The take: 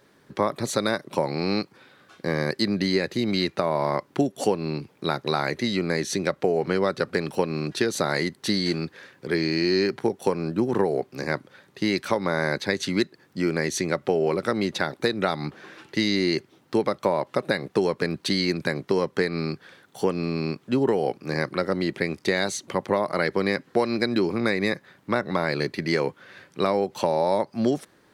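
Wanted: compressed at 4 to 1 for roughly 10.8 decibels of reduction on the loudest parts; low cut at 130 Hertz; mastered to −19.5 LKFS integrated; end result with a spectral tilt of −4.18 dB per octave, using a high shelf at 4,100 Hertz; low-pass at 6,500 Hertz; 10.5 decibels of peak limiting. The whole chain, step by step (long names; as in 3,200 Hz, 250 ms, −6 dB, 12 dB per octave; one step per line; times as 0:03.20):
high-pass filter 130 Hz
low-pass filter 6,500 Hz
high-shelf EQ 4,100 Hz +7 dB
downward compressor 4 to 1, threshold −31 dBFS
level +17 dB
brickwall limiter −7.5 dBFS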